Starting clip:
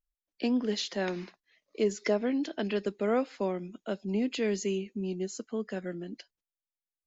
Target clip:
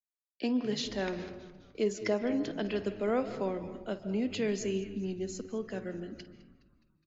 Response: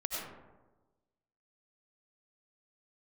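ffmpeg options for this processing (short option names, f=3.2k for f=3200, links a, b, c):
-filter_complex "[0:a]agate=range=-33dB:threshold=-55dB:ratio=3:detection=peak,asplit=6[a][b][c][d][e][f];[b]adelay=208,afreqshift=-100,volume=-19dB[g];[c]adelay=416,afreqshift=-200,volume=-23.9dB[h];[d]adelay=624,afreqshift=-300,volume=-28.8dB[i];[e]adelay=832,afreqshift=-400,volume=-33.6dB[j];[f]adelay=1040,afreqshift=-500,volume=-38.5dB[k];[a][g][h][i][j][k]amix=inputs=6:normalize=0,asplit=2[l][m];[1:a]atrim=start_sample=2205,lowpass=4k,adelay=52[n];[m][n]afir=irnorm=-1:irlink=0,volume=-13.5dB[o];[l][o]amix=inputs=2:normalize=0,volume=-2.5dB"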